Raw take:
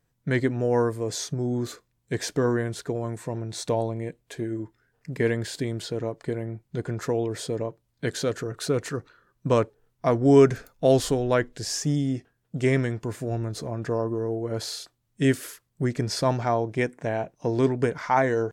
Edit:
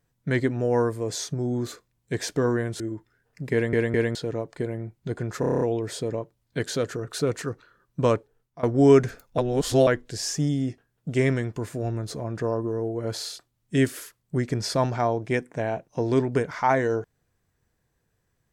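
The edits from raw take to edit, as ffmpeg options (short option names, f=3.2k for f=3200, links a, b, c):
-filter_complex "[0:a]asplit=15[a][b][c][d][e][f][g][h][i][j][k][l][m][n][o];[a]atrim=end=2.802[p];[b]atrim=start=4.478:end=5.412[q];[c]atrim=start=5.198:end=5.412[r];[d]atrim=start=5.198:end=5.412[s];[e]atrim=start=5.828:end=7.112[t];[f]atrim=start=7.078:end=7.112[u];[g]atrim=start=7.078:end=7.112[v];[h]atrim=start=7.078:end=7.112[w];[i]atrim=start=7.078:end=7.112[x];[j]atrim=start=7.078:end=7.112[y];[k]atrim=start=7.078:end=7.112[z];[l]atrim=start=7.078:end=10.1,asetpts=PTS-STARTPTS,afade=t=out:st=2.452:d=0.57:c=qsin:silence=0.0891251[aa];[m]atrim=start=10.1:end=10.852,asetpts=PTS-STARTPTS,afade=t=in:d=0.004:c=hsin:silence=0.0891251[ab];[n]atrim=start=10.848:end=11.342,asetpts=PTS-STARTPTS,areverse[ac];[o]atrim=start=11.338[ad];[p][q]acrossfade=d=0.004:c1=hsin:c2=hsin[ae];[ae][r]acrossfade=d=0.004:c1=hsin:c2=hsin[af];[af][s]acrossfade=d=0.004:c1=hsin:c2=hsin[ag];[ag][t]acrossfade=d=0.004:c1=hsin:c2=hsin[ah];[ah][u]acrossfade=d=0.004:c1=hsin:c2=hsin[ai];[ai][v]acrossfade=d=0.004:c1=hsin:c2=hsin[aj];[aj][w]acrossfade=d=0.004:c1=hsin:c2=hsin[ak];[ak][x]acrossfade=d=0.004:c1=hsin:c2=hsin[al];[al][y]acrossfade=d=0.004:c1=hsin:c2=hsin[am];[am][z]acrossfade=d=0.004:c1=hsin:c2=hsin[an];[aa][ab]concat=n=2:v=0:a=1[ao];[an][ao]acrossfade=d=0.004:c1=hsin:c2=hsin[ap];[ap][ac]acrossfade=d=0.004:c1=hsin:c2=hsin[aq];[aq][ad]acrossfade=d=0.004:c1=hsin:c2=hsin"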